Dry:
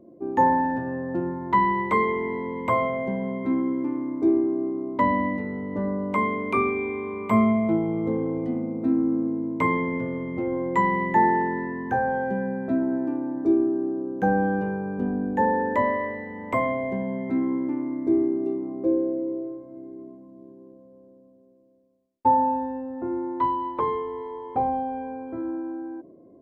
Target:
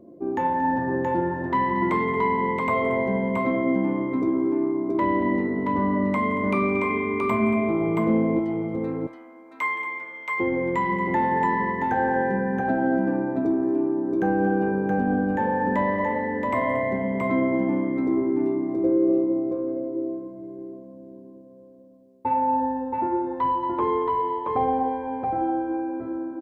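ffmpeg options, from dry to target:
ffmpeg -i in.wav -filter_complex "[0:a]asettb=1/sr,asplit=3[link_01][link_02][link_03];[link_01]atrim=end=8.394[link_04];[link_02]atrim=start=8.39:end=10.4,asetpts=PTS-STARTPTS,afade=type=in:duration=0.004:curve=qsin,afade=type=out:start_time=2.006:duration=0.004:curve=qsin,highpass=1400[link_05];[link_03]atrim=start=10.396[link_06];[link_04][link_05]acrossfade=duration=0.004:curve1=hsin:curve2=qsin[link_07];[link_07][link_06]acrossfade=duration=0.004:curve1=qsin:curve2=hsin,acontrast=82,alimiter=limit=-12.5dB:level=0:latency=1:release=77,flanger=delay=10:depth=3.3:regen=-72:speed=0.98:shape=sinusoidal,aecho=1:1:170|230|675:0.141|0.188|0.708" out.wav

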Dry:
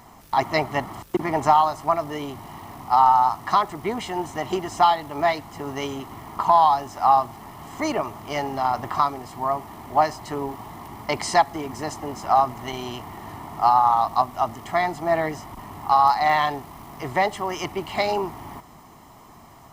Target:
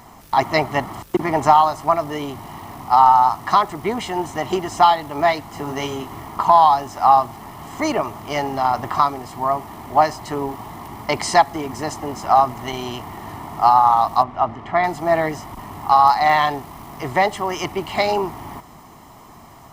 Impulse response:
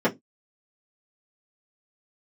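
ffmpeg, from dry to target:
-filter_complex "[0:a]asettb=1/sr,asplit=3[link_01][link_02][link_03];[link_01]atrim=end=5.484[link_04];[link_02]atrim=start=5.48:end=6.27,asetpts=PTS-STARTPTS,afade=type=in:duration=0.004:curve=qsin,afade=type=out:start_time=0.786:duration=0.004:curve=qsin,asplit=2[link_05][link_06];[link_06]adelay=27,volume=-6dB[link_07];[link_05][link_07]amix=inputs=2:normalize=0,atrim=end_sample=34839[link_08];[link_03]atrim=start=6.266[link_09];[link_04][link_08]acrossfade=duration=0.004:curve1=hsin:curve2=qsin[link_10];[link_10][link_09]acrossfade=duration=0.004:curve1=qsin:curve2=hsin,asettb=1/sr,asplit=3[link_11][link_12][link_13];[link_11]atrim=end=14.234[link_14];[link_12]atrim=start=14.23:end=14.84,asetpts=PTS-STARTPTS,afade=type=in:duration=0.004:curve=qsin,afade=type=out:start_time=0.606:duration=0.004:curve=qsin,lowpass=2600[link_15];[link_13]atrim=start=14.836[link_16];[link_14][link_15]acrossfade=duration=0.004:curve1=hsin:curve2=qsin[link_17];[link_17][link_16]acrossfade=duration=0.004:curve1=qsin:curve2=hsin,volume=4dB"

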